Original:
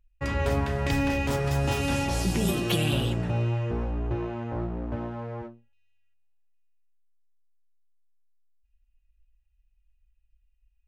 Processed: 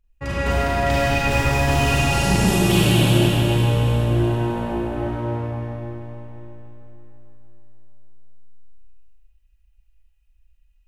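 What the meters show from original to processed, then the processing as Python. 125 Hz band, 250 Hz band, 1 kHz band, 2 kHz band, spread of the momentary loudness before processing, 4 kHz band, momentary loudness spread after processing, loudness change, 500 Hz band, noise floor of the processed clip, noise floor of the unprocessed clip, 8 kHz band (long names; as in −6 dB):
+9.0 dB, +8.0 dB, +10.0 dB, +10.0 dB, 9 LU, +9.5 dB, 13 LU, +8.5 dB, +8.0 dB, −59 dBFS, −69 dBFS, +9.0 dB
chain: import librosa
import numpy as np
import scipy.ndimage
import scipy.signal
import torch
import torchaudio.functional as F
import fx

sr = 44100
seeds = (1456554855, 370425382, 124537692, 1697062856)

y = fx.rev_schroeder(x, sr, rt60_s=3.7, comb_ms=33, drr_db=-8.5)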